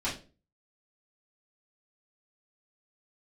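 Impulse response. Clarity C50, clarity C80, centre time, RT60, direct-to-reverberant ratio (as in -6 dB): 8.5 dB, 15.0 dB, 26 ms, 0.35 s, -10.0 dB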